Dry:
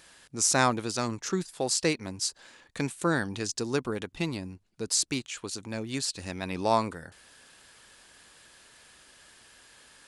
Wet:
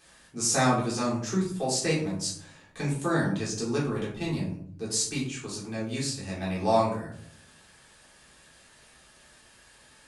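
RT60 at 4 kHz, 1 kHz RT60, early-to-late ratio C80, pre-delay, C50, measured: 0.30 s, 0.55 s, 9.0 dB, 3 ms, 5.0 dB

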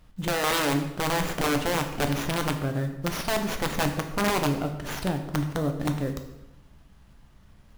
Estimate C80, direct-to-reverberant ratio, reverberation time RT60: 10.5 dB, 5.0 dB, 0.95 s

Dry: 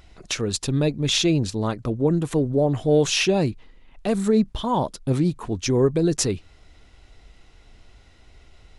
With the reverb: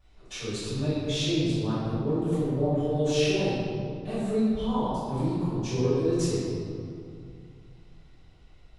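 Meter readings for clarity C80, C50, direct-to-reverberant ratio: −2.0 dB, −4.5 dB, −17.0 dB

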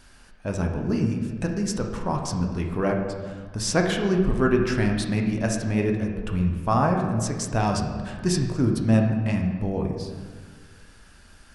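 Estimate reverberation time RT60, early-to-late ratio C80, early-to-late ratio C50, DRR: 1.6 s, 6.0 dB, 4.5 dB, 1.5 dB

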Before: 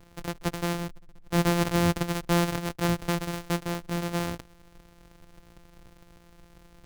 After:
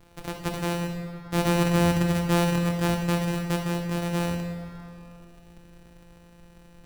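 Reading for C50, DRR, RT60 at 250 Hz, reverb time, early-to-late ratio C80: 3.0 dB, 1.0 dB, 2.7 s, 2.6 s, 4.5 dB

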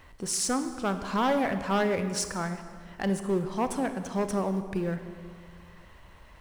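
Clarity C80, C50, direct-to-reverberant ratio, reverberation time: 10.5 dB, 9.5 dB, 8.5 dB, 2.0 s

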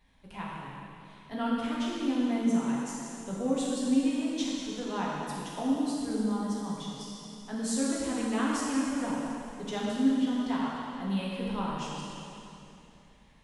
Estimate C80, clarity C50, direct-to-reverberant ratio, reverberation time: −1.0 dB, −2.5 dB, −6.0 dB, 2.9 s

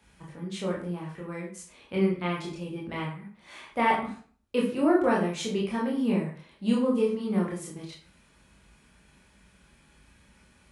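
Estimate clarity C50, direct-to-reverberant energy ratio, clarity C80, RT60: 6.0 dB, −4.0 dB, 9.5 dB, 0.45 s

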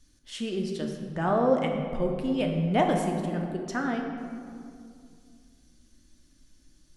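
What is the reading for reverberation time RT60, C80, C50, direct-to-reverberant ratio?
2.3 s, 5.5 dB, 4.0 dB, 1.5 dB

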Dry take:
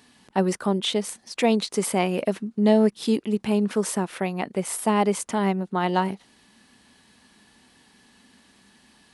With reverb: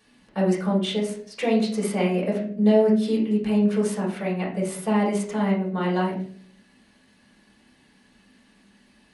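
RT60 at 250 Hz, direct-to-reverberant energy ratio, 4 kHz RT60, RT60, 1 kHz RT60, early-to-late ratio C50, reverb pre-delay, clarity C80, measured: 0.75 s, −5.0 dB, 0.35 s, 0.55 s, 0.40 s, 6.0 dB, 3 ms, 11.0 dB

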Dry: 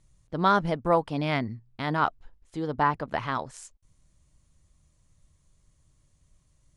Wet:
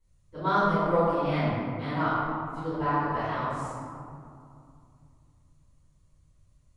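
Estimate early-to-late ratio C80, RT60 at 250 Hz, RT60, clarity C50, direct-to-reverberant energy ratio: −1.5 dB, 3.2 s, 2.5 s, −4.0 dB, −14.5 dB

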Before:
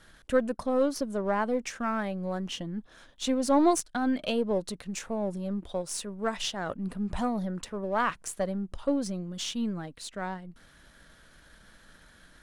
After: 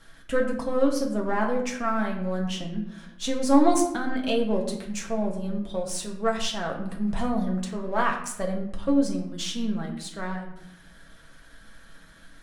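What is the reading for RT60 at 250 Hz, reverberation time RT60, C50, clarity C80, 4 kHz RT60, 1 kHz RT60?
1.3 s, 0.80 s, 7.5 dB, 9.5 dB, 0.50 s, 0.75 s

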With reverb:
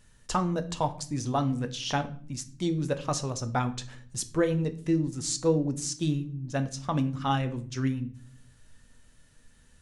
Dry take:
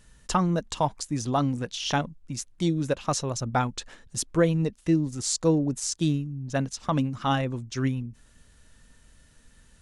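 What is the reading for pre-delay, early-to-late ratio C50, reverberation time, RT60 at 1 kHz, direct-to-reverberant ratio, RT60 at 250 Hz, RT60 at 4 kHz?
7 ms, 15.5 dB, 0.50 s, 0.40 s, 8.0 dB, 0.95 s, 0.40 s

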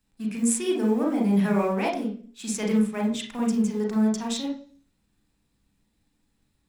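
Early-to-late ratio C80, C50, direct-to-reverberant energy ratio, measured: 13.0 dB, 6.0 dB, 0.5 dB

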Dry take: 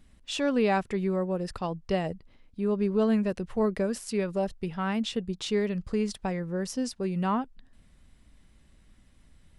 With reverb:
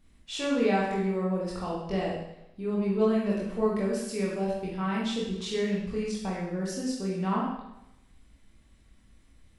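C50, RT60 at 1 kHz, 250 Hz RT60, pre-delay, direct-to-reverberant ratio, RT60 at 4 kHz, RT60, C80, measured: 1.5 dB, 0.85 s, 0.85 s, 18 ms, −5.5 dB, 0.80 s, 0.85 s, 4.5 dB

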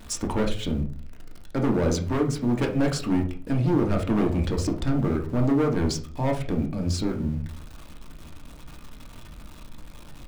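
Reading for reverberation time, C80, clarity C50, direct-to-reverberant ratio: 0.40 s, 16.0 dB, 9.5 dB, 2.0 dB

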